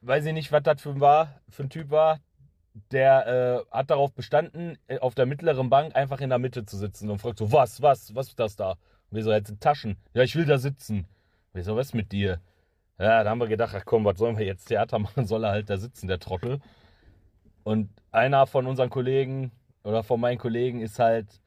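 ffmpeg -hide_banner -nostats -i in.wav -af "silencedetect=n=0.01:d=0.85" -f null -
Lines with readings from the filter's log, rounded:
silence_start: 16.59
silence_end: 17.66 | silence_duration: 1.07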